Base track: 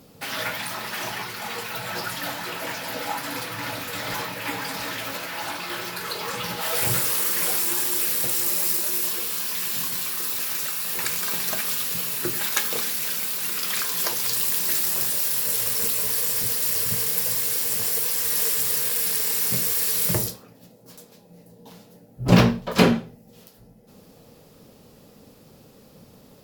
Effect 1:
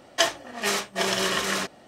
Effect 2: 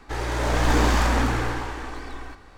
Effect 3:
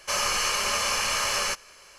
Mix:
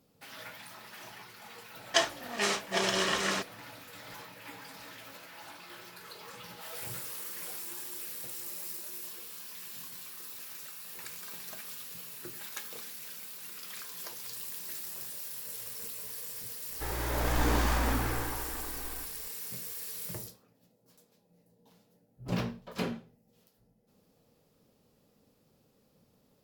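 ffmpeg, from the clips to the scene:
-filter_complex "[0:a]volume=-17.5dB[a];[1:a]lowpass=9k,atrim=end=1.87,asetpts=PTS-STARTPTS,volume=-4dB,afade=t=in:d=0.004:c=hsin,afade=t=out:st=1.866:d=0.004:c=hsin,adelay=1760[b];[2:a]atrim=end=2.57,asetpts=PTS-STARTPTS,volume=-8dB,afade=t=in:d=0.004:c=hsin,afade=t=out:st=2.566:d=0.004:c=hsin,adelay=16710[c];[a][b][c]amix=inputs=3:normalize=0"

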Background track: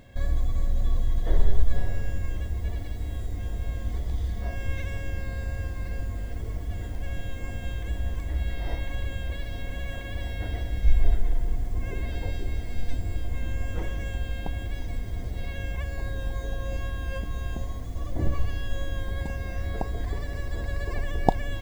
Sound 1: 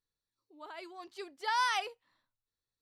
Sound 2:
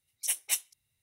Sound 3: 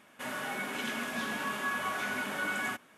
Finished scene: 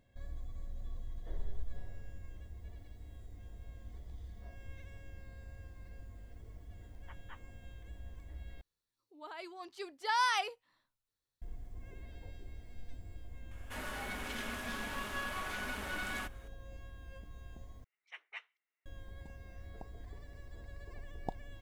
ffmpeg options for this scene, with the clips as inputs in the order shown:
-filter_complex "[2:a]asplit=2[a][b];[0:a]volume=-19dB[c];[a]lowpass=f=3.3k:t=q:w=0.5098,lowpass=f=3.3k:t=q:w=0.6013,lowpass=f=3.3k:t=q:w=0.9,lowpass=f=3.3k:t=q:w=2.563,afreqshift=-3900[d];[3:a]aeval=exprs='clip(val(0),-1,0.00891)':c=same[e];[b]highpass=f=410:w=0.5412,highpass=f=410:w=1.3066,equalizer=f=550:t=q:w=4:g=-9,equalizer=f=810:t=q:w=4:g=-4,equalizer=f=1.3k:t=q:w=4:g=4,equalizer=f=1.9k:t=q:w=4:g=3,lowpass=f=2.2k:w=0.5412,lowpass=f=2.2k:w=1.3066[f];[c]asplit=3[g][h][i];[g]atrim=end=8.614[j];[1:a]atrim=end=2.81[k];[h]atrim=start=11.416:end=17.844[l];[f]atrim=end=1.02,asetpts=PTS-STARTPTS,volume=-4.5dB[m];[i]atrim=start=18.856[n];[d]atrim=end=1.02,asetpts=PTS-STARTPTS,volume=-15dB,afade=t=in:d=0.004:c=hsin,afade=t=out:st=1.016:d=0.004:c=hsin,adelay=6800[o];[e]atrim=end=2.97,asetpts=PTS-STARTPTS,volume=-3.5dB,afade=t=in:d=0.004:c=hsin,afade=t=out:st=2.966:d=0.004:c=hsin,adelay=13510[p];[j][k]acrossfade=d=0.004:c1=hsin:c2=hsin[q];[q][l]acrossfade=d=0.004:c1=hsin:c2=hsin[r];[r][m]acrossfade=d=0.004:c1=hsin:c2=hsin[s];[s][n]acrossfade=d=0.004:c1=hsin:c2=hsin[t];[t][o][p]amix=inputs=3:normalize=0"

